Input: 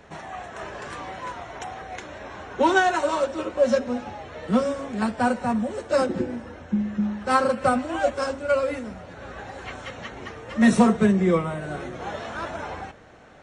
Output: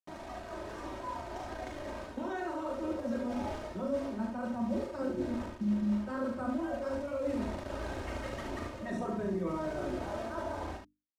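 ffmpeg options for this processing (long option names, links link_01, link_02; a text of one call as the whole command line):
ffmpeg -i in.wav -af "acrusher=bits=5:mix=0:aa=0.000001,bandreject=frequency=50:width_type=h:width=6,bandreject=frequency=100:width_type=h:width=6,bandreject=frequency=150:width_type=h:width=6,bandreject=frequency=200:width_type=h:width=6,bandreject=frequency=250:width_type=h:width=6,bandreject=frequency=300:width_type=h:width=6,aecho=1:1:3.2:0.57,atempo=1.2,adynamicequalizer=threshold=0.0126:dfrequency=980:dqfactor=5.2:tfrequency=980:tqfactor=5.2:attack=5:release=100:ratio=0.375:range=2:mode=boostabove:tftype=bell,afftfilt=real='re*lt(hypot(re,im),1.12)':imag='im*lt(hypot(re,im),1.12)':win_size=1024:overlap=0.75,dynaudnorm=framelen=400:gausssize=11:maxgain=11.5dB,lowpass=5200,areverse,acompressor=threshold=-26dB:ratio=12,areverse,equalizer=frequency=3300:width=0.33:gain=-13.5,aecho=1:1:39|73:0.531|0.562,volume=-4.5dB" out.wav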